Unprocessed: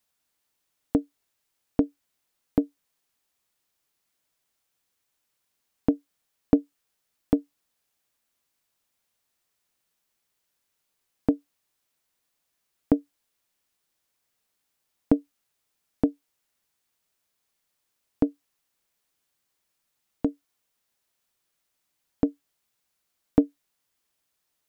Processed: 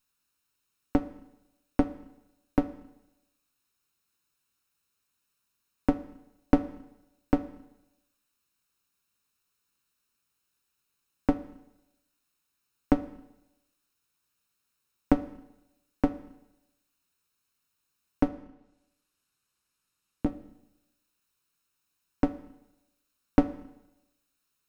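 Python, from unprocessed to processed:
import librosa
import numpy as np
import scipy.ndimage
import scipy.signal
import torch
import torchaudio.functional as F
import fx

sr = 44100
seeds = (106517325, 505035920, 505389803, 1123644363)

y = fx.lower_of_two(x, sr, delay_ms=0.74)
y = fx.env_lowpass_down(y, sr, base_hz=360.0, full_db=-49.5, at=(18.28, 20.26))
y = fx.rev_schroeder(y, sr, rt60_s=0.91, comb_ms=26, drr_db=13.0)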